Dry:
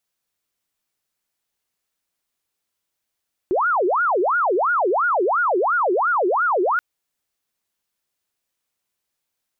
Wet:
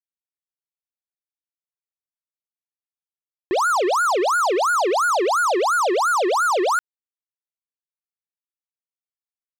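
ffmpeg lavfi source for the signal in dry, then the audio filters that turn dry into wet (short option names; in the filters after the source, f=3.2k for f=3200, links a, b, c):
-f lavfi -i "aevalsrc='0.158*sin(2*PI*(900*t-550/(2*PI*2.9)*sin(2*PI*2.9*t)))':d=3.28:s=44100"
-af "lowshelf=f=370:g=-3.5,acrusher=bits=3:mix=0:aa=0.5"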